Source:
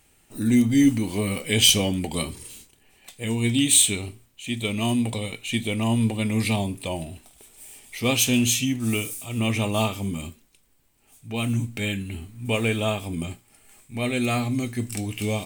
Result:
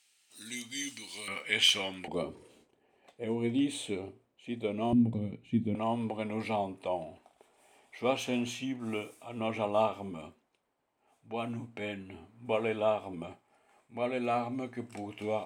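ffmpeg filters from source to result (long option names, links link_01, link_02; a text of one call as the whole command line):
ffmpeg -i in.wav -af "asetnsamples=nb_out_samples=441:pad=0,asendcmd='1.28 bandpass f 1600;2.08 bandpass f 530;4.93 bandpass f 190;5.75 bandpass f 740',bandpass=frequency=4500:width_type=q:width=1.3:csg=0" out.wav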